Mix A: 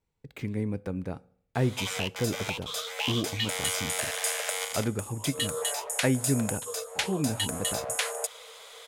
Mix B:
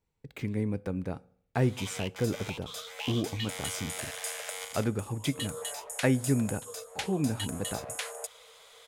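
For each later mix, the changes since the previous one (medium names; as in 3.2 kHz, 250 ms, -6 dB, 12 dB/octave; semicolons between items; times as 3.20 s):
background -7.0 dB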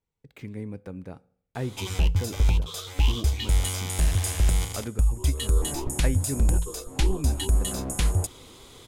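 speech -5.0 dB; background: remove rippled Chebyshev high-pass 440 Hz, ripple 6 dB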